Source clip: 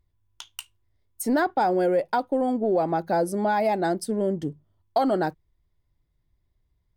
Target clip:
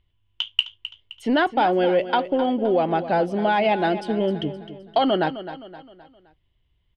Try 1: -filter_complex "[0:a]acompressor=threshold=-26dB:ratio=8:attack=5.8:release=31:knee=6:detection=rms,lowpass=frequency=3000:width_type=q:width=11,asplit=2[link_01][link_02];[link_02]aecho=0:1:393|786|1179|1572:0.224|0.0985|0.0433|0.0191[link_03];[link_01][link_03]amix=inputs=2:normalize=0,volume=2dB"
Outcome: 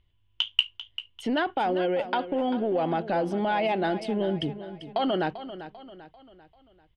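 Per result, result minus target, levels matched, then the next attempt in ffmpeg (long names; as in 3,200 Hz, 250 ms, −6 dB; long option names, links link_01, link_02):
echo 133 ms late; downward compressor: peak gain reduction +9 dB
-filter_complex "[0:a]acompressor=threshold=-26dB:ratio=8:attack=5.8:release=31:knee=6:detection=rms,lowpass=frequency=3000:width_type=q:width=11,asplit=2[link_01][link_02];[link_02]aecho=0:1:260|520|780|1040:0.224|0.0985|0.0433|0.0191[link_03];[link_01][link_03]amix=inputs=2:normalize=0,volume=2dB"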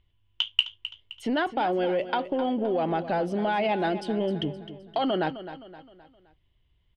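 downward compressor: peak gain reduction +9 dB
-filter_complex "[0:a]lowpass=frequency=3000:width_type=q:width=11,asplit=2[link_01][link_02];[link_02]aecho=0:1:260|520|780|1040:0.224|0.0985|0.0433|0.0191[link_03];[link_01][link_03]amix=inputs=2:normalize=0,volume=2dB"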